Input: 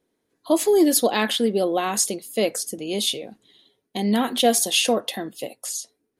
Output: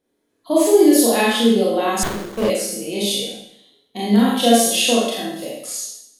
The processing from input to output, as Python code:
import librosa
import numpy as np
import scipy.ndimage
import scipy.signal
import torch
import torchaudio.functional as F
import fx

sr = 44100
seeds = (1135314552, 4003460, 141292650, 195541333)

y = fx.rev_schroeder(x, sr, rt60_s=0.72, comb_ms=27, drr_db=-6.0)
y = fx.hpss(y, sr, part='harmonic', gain_db=6)
y = fx.running_max(y, sr, window=17, at=(2.03, 2.5))
y = F.gain(torch.from_numpy(y), -7.5).numpy()